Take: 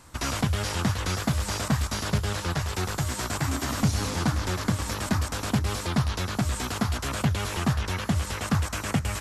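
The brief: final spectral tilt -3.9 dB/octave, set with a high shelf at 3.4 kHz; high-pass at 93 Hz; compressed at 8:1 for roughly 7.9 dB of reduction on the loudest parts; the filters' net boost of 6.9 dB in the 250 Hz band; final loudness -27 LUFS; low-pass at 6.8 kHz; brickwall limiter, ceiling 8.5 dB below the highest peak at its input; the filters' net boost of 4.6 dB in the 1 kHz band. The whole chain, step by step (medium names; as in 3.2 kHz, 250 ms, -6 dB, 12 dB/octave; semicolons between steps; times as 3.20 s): high-pass 93 Hz; low-pass 6.8 kHz; peaking EQ 250 Hz +9 dB; peaking EQ 1 kHz +4.5 dB; treble shelf 3.4 kHz +7 dB; compression 8:1, threshold -22 dBFS; trim +2.5 dB; peak limiter -16.5 dBFS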